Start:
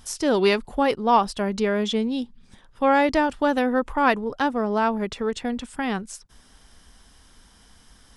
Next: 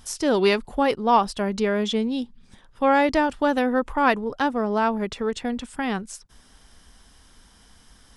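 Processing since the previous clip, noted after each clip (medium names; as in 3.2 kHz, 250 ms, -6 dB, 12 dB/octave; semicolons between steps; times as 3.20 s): no audible change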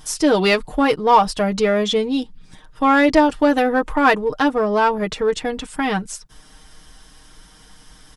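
comb 6.5 ms, depth 71%; in parallel at -8.5 dB: hard clipper -19 dBFS, distortion -8 dB; on the sum: trim +2 dB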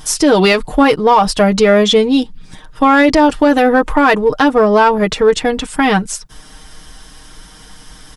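loudness maximiser +9.5 dB; trim -1 dB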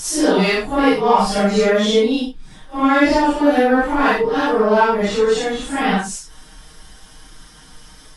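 phase randomisation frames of 200 ms; trim -4.5 dB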